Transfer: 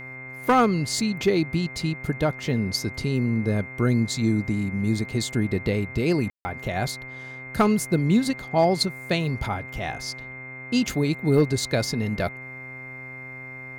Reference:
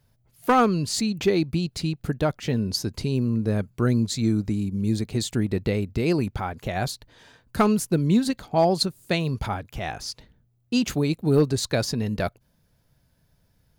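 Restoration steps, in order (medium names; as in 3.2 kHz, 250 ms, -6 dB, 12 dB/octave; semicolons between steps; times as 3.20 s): de-hum 129.6 Hz, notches 20; band-stop 2.1 kHz, Q 30; room tone fill 6.30–6.45 s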